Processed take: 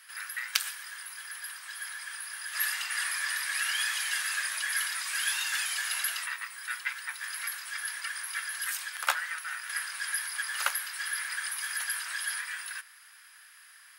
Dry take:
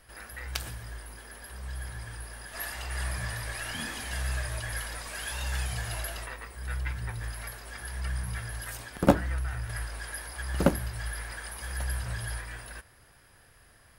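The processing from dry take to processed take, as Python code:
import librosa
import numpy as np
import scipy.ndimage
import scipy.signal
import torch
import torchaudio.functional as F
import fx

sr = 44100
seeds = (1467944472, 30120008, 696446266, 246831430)

y = scipy.signal.sosfilt(scipy.signal.butter(4, 1300.0, 'highpass', fs=sr, output='sos'), x)
y = y * 10.0 ** (7.5 / 20.0)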